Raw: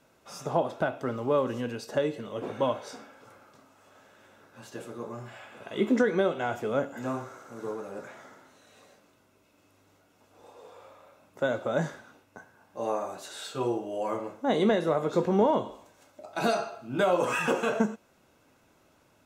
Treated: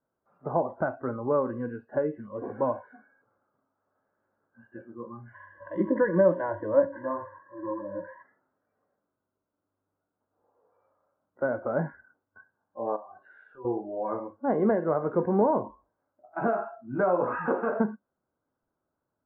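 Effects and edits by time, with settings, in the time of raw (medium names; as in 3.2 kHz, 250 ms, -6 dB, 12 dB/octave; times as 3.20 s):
5.34–8.23 s: rippled EQ curve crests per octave 1.2, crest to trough 18 dB
12.96–13.65 s: compression 8:1, threshold -38 dBFS
whole clip: spectral noise reduction 19 dB; steep low-pass 1.6 kHz 36 dB/octave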